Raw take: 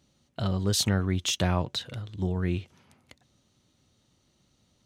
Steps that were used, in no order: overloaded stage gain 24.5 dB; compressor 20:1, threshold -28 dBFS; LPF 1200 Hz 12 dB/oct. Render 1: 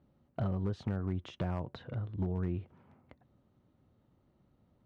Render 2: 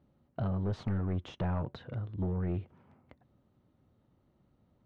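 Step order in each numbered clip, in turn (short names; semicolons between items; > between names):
compressor > LPF > overloaded stage; overloaded stage > compressor > LPF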